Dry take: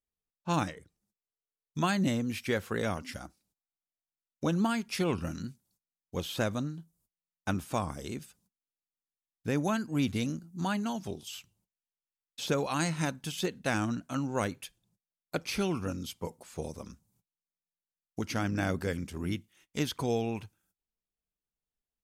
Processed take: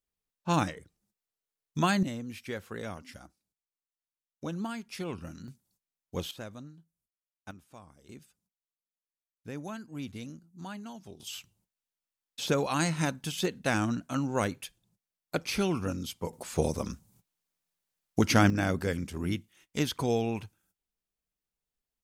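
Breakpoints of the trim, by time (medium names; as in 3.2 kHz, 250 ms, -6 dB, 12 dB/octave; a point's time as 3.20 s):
+2.5 dB
from 2.03 s -7 dB
from 5.48 s 0 dB
from 6.31 s -12 dB
from 7.51 s -19.5 dB
from 8.09 s -10 dB
from 11.20 s +2 dB
from 16.33 s +10 dB
from 18.50 s +2 dB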